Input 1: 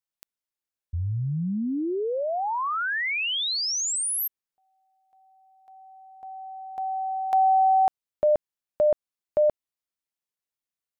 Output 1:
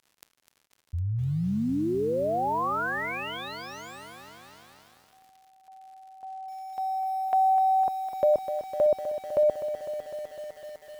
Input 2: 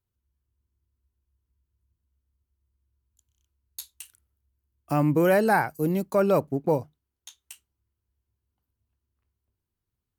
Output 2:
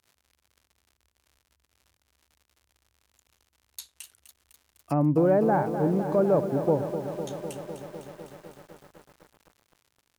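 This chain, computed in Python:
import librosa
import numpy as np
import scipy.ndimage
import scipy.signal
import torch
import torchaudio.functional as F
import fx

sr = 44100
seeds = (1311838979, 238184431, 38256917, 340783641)

y = fx.dmg_crackle(x, sr, seeds[0], per_s=130.0, level_db=-48.0)
y = fx.highpass(y, sr, hz=54.0, slope=6)
y = fx.env_lowpass_down(y, sr, base_hz=820.0, full_db=-23.0)
y = fx.echo_crushed(y, sr, ms=252, feedback_pct=80, bits=8, wet_db=-10.0)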